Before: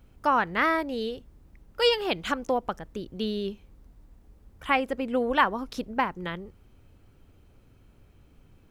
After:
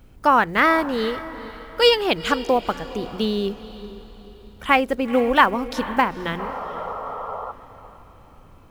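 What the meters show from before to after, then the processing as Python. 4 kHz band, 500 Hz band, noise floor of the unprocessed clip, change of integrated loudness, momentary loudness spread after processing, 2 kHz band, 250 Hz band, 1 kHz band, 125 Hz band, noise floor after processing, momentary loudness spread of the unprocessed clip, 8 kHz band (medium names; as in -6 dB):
+7.0 dB, +7.0 dB, -58 dBFS, +6.5 dB, 18 LU, +7.0 dB, +7.0 dB, +7.5 dB, +6.5 dB, -48 dBFS, 13 LU, +8.0 dB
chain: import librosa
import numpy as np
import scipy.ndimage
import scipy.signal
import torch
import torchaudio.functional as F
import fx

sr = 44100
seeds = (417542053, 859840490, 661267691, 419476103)

p1 = fx.block_float(x, sr, bits=7)
p2 = fx.hum_notches(p1, sr, base_hz=60, count=3)
p3 = fx.spec_paint(p2, sr, seeds[0], shape='noise', start_s=6.39, length_s=1.13, low_hz=410.0, high_hz=1400.0, level_db=-38.0)
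p4 = p3 + fx.echo_diffused(p3, sr, ms=464, feedback_pct=42, wet_db=-15, dry=0)
y = F.gain(torch.from_numpy(p4), 7.0).numpy()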